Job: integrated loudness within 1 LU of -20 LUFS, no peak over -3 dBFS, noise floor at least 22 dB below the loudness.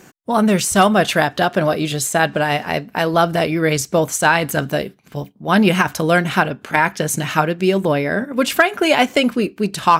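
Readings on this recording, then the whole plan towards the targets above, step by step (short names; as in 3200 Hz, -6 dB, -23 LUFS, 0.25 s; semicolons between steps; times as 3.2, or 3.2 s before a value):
loudness -17.0 LUFS; peak -1.5 dBFS; loudness target -20.0 LUFS
-> gain -3 dB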